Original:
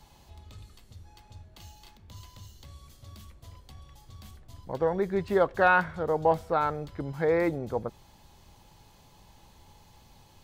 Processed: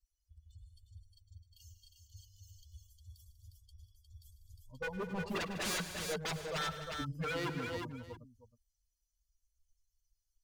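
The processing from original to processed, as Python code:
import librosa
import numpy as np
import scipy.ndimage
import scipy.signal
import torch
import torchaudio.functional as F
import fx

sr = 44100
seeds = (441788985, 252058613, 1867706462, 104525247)

y = fx.bin_expand(x, sr, power=3.0)
y = 10.0 ** (-32.5 / 20.0) * (np.abs((y / 10.0 ** (-32.5 / 20.0) + 3.0) % 4.0 - 2.0) - 1.0)
y = fx.echo_multitap(y, sr, ms=(104, 153, 195, 258, 357, 674), db=(-15.0, -15.0, -15.0, -13.5, -4.5, -18.0))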